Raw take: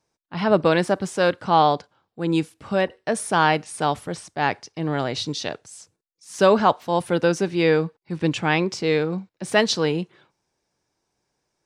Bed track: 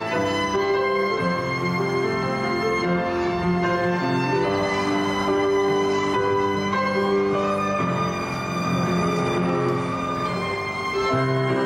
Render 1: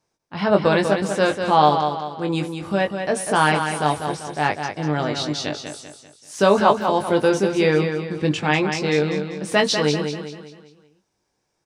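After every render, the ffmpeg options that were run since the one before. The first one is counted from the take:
-filter_complex "[0:a]asplit=2[s0][s1];[s1]adelay=20,volume=0.531[s2];[s0][s2]amix=inputs=2:normalize=0,aecho=1:1:195|390|585|780|975:0.447|0.188|0.0788|0.0331|0.0139"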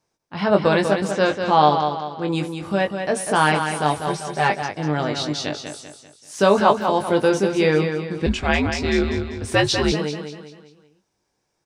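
-filter_complex "[0:a]asettb=1/sr,asplit=3[s0][s1][s2];[s0]atrim=end=1.114[s3];[s1]atrim=start=1.11:end=2.28,asetpts=PTS-STARTPTS,afade=t=in:d=0.004:c=qsin,afade=t=out:st=1.166:d=0.004:c=qsin,lowpass=f=6700:w=0.5412,lowpass=f=6700:w=1.3066[s4];[s2]atrim=start=2.276[s5];[s3][s4]acrossfade=d=0.004:c1=hsin:c2=qsin[s6];[s6][s5]acrossfade=d=0.004:c1=qsin:c2=hsin,asettb=1/sr,asplit=3[s7][s8][s9];[s7]atrim=end=4.064[s10];[s8]atrim=start=4.06:end=4.62,asetpts=PTS-STARTPTS,afade=t=in:d=0.004:c=qsin,afade=t=out:st=0.556:d=0.004:c=qsin,aecho=1:1:5.1:0.79,atrim=end_sample=24696[s11];[s9]atrim=start=4.616[s12];[s10][s11]acrossfade=d=0.004:c1=hsin:c2=qsin[s13];[s13][s12]acrossfade=d=0.004:c1=qsin:c2=hsin,asettb=1/sr,asplit=3[s14][s15][s16];[s14]atrim=end=8.264[s17];[s15]atrim=start=8.26:end=9.92,asetpts=PTS-STARTPTS,afade=t=in:d=0.004:c=qsin,afade=t=out:st=1.656:d=0.004:c=qsin,afreqshift=-92[s18];[s16]atrim=start=9.916[s19];[s17][s18]acrossfade=d=0.004:c1=hsin:c2=qsin[s20];[s20][s19]acrossfade=d=0.004:c1=qsin:c2=hsin"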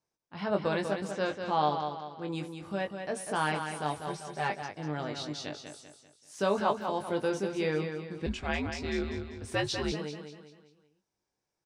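-af "volume=0.237"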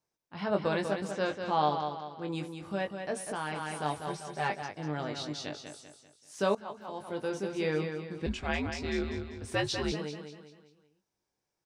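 -filter_complex "[0:a]asettb=1/sr,asplit=3[s0][s1][s2];[s0]atrim=end=3.264[s3];[s1]atrim=start=3.26:end=3.72,asetpts=PTS-STARTPTS,afade=t=in:d=0.004:c=qsin,afade=t=out:st=0.456:d=0.004:c=qsin,acompressor=threshold=0.0282:ratio=5:attack=3.2:release=140:knee=1:detection=peak[s4];[s2]atrim=start=3.716[s5];[s3][s4]acrossfade=d=0.004:c1=hsin:c2=qsin[s6];[s6][s5]acrossfade=d=0.004:c1=qsin:c2=hsin,asplit=2[s7][s8];[s7]atrim=end=6.55,asetpts=PTS-STARTPTS,afade=t=out:st=6.546:d=0.004:c=hsin:silence=0.105925[s9];[s8]atrim=start=6.55,asetpts=PTS-STARTPTS,afade=t=in:d=1.21:silence=0.105925[s10];[s9][s10]concat=n=2:v=0:a=1"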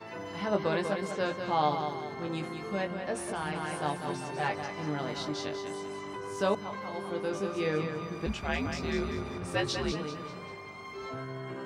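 -filter_complex "[1:a]volume=0.126[s0];[0:a][s0]amix=inputs=2:normalize=0"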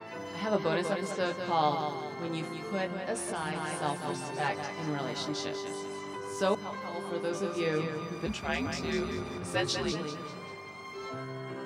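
-af "highpass=91,adynamicequalizer=threshold=0.00282:dfrequency=4000:dqfactor=0.7:tfrequency=4000:tqfactor=0.7:attack=5:release=100:ratio=0.375:range=2:mode=boostabove:tftype=highshelf"

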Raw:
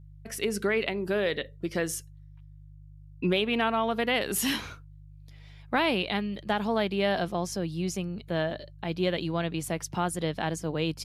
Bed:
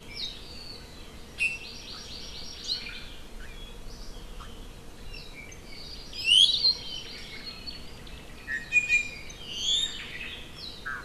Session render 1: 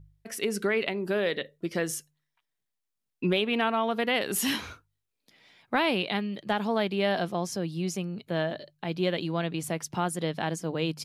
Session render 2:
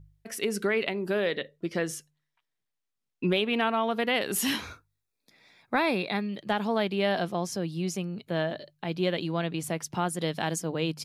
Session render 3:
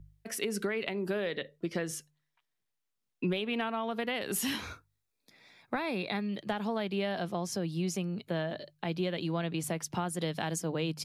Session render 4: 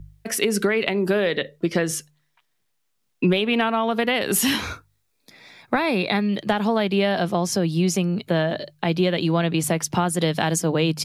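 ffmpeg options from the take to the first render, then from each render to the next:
-af "bandreject=f=50:t=h:w=4,bandreject=f=100:t=h:w=4,bandreject=f=150:t=h:w=4"
-filter_complex "[0:a]asettb=1/sr,asplit=3[s0][s1][s2];[s0]atrim=end=1.264[s3];[s1]atrim=start=1.26:end=3.27,asetpts=PTS-STARTPTS,afade=t=in:d=0.004:c=qsin,afade=t=out:st=2.006:d=0.004:c=qsin,highshelf=f=9700:g=-10[s4];[s2]atrim=start=3.266[s5];[s3][s4]acrossfade=d=0.004:c1=hsin:c2=qsin[s6];[s6][s5]acrossfade=d=0.004:c1=qsin:c2=hsin,asettb=1/sr,asplit=3[s7][s8][s9];[s7]atrim=end=4.644[s10];[s8]atrim=start=4.64:end=6.29,asetpts=PTS-STARTPTS,afade=t=in:d=0.004:c=qsin,afade=t=out:st=1.646:d=0.004:c=qsin,asuperstop=centerf=3000:order=4:qfactor=5.3[s11];[s9]atrim=start=6.286[s12];[s10][s11]acrossfade=d=0.004:c1=hsin:c2=qsin[s13];[s13][s12]acrossfade=d=0.004:c1=qsin:c2=hsin,asettb=1/sr,asplit=3[s14][s15][s16];[s14]atrim=end=10.214[s17];[s15]atrim=start=10.21:end=10.62,asetpts=PTS-STARTPTS,afade=t=in:d=0.004:c=qsin,afade=t=out:st=0.406:d=0.004:c=qsin,highshelf=f=4700:g=9[s18];[s16]atrim=start=10.616[s19];[s17][s18]acrossfade=d=0.004:c1=hsin:c2=qsin[s20];[s20][s19]acrossfade=d=0.004:c1=qsin:c2=hsin"
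-filter_complex "[0:a]acrossover=split=140[s0][s1];[s1]acompressor=threshold=0.0316:ratio=5[s2];[s0][s2]amix=inputs=2:normalize=0"
-af "volume=3.98"

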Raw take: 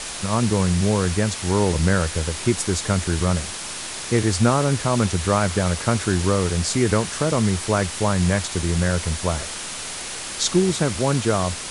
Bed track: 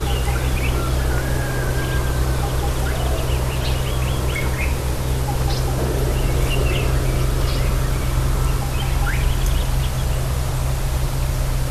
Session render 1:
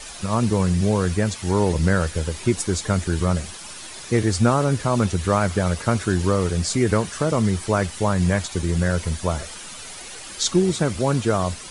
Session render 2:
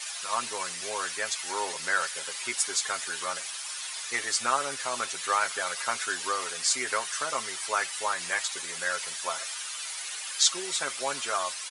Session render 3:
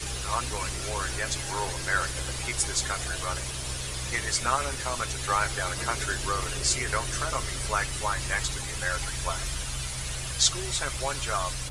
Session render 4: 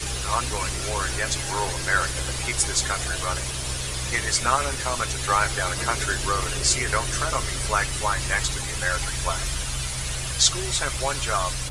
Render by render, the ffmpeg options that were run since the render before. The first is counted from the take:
-af "afftdn=nr=10:nf=-32"
-af "highpass=1200,aecho=1:1:7.5:0.59"
-filter_complex "[1:a]volume=0.158[s0];[0:a][s0]amix=inputs=2:normalize=0"
-af "volume=1.68,alimiter=limit=0.708:level=0:latency=1"

